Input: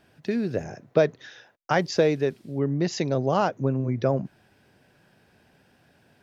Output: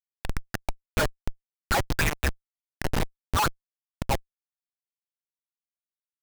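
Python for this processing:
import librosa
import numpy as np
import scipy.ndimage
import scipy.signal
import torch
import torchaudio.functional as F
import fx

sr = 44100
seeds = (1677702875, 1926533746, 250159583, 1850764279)

y = scipy.signal.sosfilt(scipy.signal.butter(2, 4600.0, 'lowpass', fs=sr, output='sos'), x)
y = fx.peak_eq(y, sr, hz=80.0, db=8.0, octaves=0.73)
y = fx.filter_lfo_highpass(y, sr, shape='sine', hz=5.5, low_hz=850.0, high_hz=3000.0, q=5.6)
y = fx.peak_eq(y, sr, hz=470.0, db=-9.0, octaves=0.31)
y = fx.schmitt(y, sr, flips_db=-26.0)
y = F.gain(torch.from_numpy(y), 7.5).numpy()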